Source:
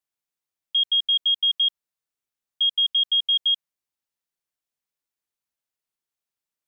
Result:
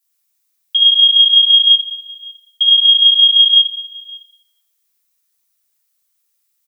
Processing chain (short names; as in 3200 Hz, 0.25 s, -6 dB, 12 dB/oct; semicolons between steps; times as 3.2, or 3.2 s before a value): tilt +4.5 dB/oct; on a send: echo 0.557 s -23.5 dB; on the sum: plate-style reverb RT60 1.3 s, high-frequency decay 0.55×, DRR -7 dB